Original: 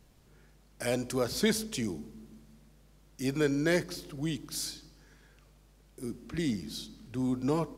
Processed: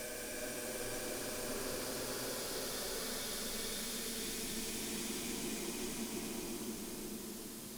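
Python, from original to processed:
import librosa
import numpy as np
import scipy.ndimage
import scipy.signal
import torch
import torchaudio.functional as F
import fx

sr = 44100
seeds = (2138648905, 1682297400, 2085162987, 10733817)

p1 = fx.fade_in_head(x, sr, length_s=2.22)
p2 = fx.riaa(p1, sr, side='recording')
p3 = fx.over_compress(p2, sr, threshold_db=-38.0, ratio=-1.0)
p4 = fx.granulator(p3, sr, seeds[0], grain_ms=41.0, per_s=17.0, spray_ms=13.0, spread_st=0)
p5 = fx.tube_stage(p4, sr, drive_db=49.0, bias=0.6)
p6 = fx.paulstretch(p5, sr, seeds[1], factor=5.0, window_s=1.0, from_s=0.76)
p7 = p6 + fx.echo_stepped(p6, sr, ms=367, hz=1300.0, octaves=1.4, feedback_pct=70, wet_db=-4.5, dry=0)
y = F.gain(torch.from_numpy(p7), 13.5).numpy()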